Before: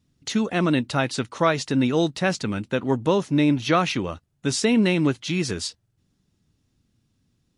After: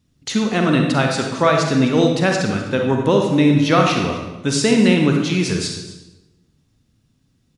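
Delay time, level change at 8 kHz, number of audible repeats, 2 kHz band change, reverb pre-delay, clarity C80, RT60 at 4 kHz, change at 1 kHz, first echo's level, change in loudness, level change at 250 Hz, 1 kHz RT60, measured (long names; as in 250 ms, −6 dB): 255 ms, +5.0 dB, 1, +5.5 dB, 37 ms, 6.0 dB, 0.85 s, +6.0 dB, −17.0 dB, +6.0 dB, +5.5 dB, 1.0 s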